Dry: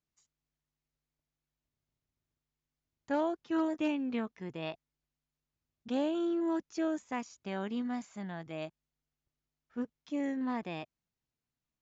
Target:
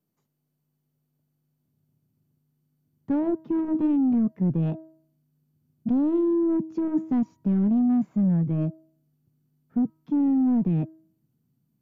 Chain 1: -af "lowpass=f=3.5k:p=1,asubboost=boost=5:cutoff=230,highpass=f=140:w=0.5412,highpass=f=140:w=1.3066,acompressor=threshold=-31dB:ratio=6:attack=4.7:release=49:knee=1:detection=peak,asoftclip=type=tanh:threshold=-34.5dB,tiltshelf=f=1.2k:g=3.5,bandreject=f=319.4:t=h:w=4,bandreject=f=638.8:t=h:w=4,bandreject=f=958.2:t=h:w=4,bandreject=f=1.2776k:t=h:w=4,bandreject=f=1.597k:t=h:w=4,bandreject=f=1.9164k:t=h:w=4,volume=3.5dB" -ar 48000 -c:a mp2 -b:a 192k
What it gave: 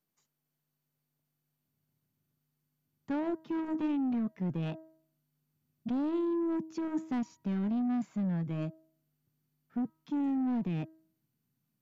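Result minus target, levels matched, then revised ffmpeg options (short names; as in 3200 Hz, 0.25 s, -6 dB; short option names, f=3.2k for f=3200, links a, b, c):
1000 Hz band +6.5 dB
-af "lowpass=f=3.5k:p=1,asubboost=boost=5:cutoff=230,highpass=f=140:w=0.5412,highpass=f=140:w=1.3066,acompressor=threshold=-31dB:ratio=6:attack=4.7:release=49:knee=1:detection=peak,asoftclip=type=tanh:threshold=-34.5dB,tiltshelf=f=1.2k:g=14.5,bandreject=f=319.4:t=h:w=4,bandreject=f=638.8:t=h:w=4,bandreject=f=958.2:t=h:w=4,bandreject=f=1.2776k:t=h:w=4,bandreject=f=1.597k:t=h:w=4,bandreject=f=1.9164k:t=h:w=4,volume=3.5dB" -ar 48000 -c:a mp2 -b:a 192k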